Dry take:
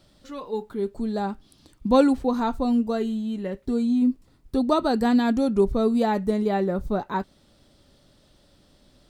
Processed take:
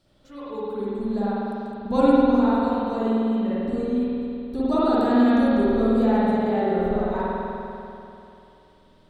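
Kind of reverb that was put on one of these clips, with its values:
spring reverb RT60 2.9 s, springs 49 ms, chirp 60 ms, DRR −10 dB
level −9 dB

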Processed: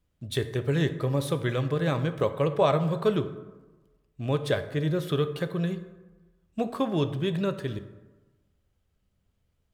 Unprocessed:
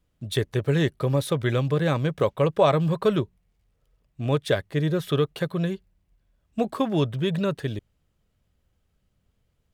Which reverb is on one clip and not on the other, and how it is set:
dense smooth reverb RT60 1.2 s, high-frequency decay 0.5×, DRR 9.5 dB
level −3.5 dB

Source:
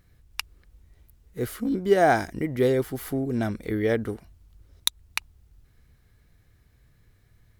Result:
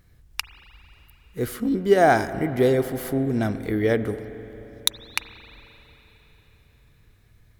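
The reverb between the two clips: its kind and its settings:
spring reverb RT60 4 s, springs 37/44 ms, chirp 55 ms, DRR 12 dB
level +2.5 dB

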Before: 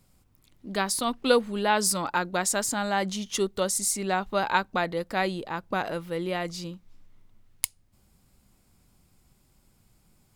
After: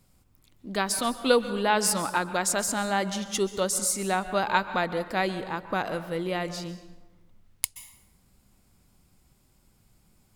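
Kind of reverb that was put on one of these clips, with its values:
dense smooth reverb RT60 1.1 s, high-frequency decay 0.6×, pre-delay 115 ms, DRR 12 dB

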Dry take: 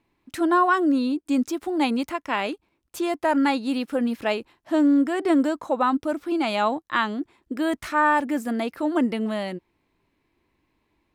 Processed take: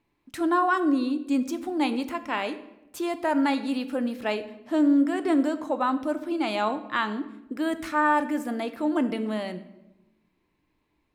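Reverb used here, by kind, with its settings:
rectangular room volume 350 cubic metres, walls mixed, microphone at 0.38 metres
level −3.5 dB

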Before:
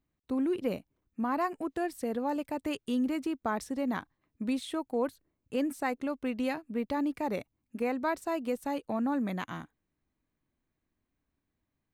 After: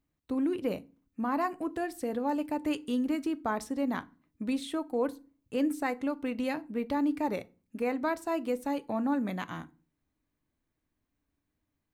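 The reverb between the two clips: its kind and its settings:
feedback delay network reverb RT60 0.34 s, low-frequency decay 1.5×, high-frequency decay 0.75×, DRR 13 dB

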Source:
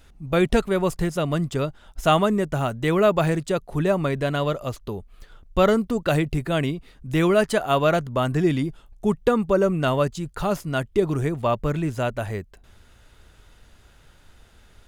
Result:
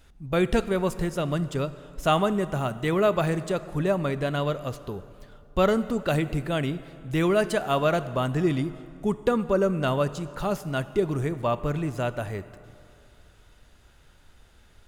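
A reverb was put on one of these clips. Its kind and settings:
dense smooth reverb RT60 2.6 s, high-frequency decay 0.7×, DRR 13.5 dB
level −3.5 dB

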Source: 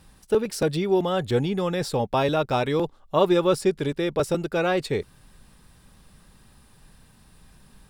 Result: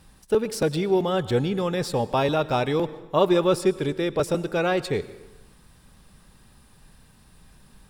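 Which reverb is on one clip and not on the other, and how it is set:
dense smooth reverb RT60 1.1 s, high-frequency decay 0.8×, pre-delay 85 ms, DRR 16 dB

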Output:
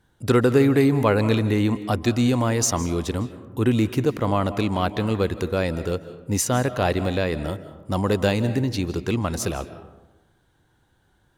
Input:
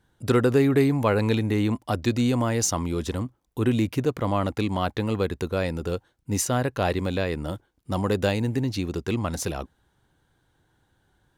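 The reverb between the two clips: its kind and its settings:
comb and all-pass reverb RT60 1.1 s, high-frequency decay 0.4×, pre-delay 120 ms, DRR 13 dB
level +2.5 dB

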